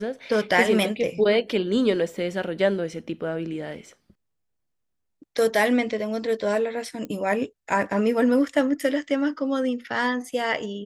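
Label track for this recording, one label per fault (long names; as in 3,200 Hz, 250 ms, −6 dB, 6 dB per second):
7.050000	7.050000	click −21 dBFS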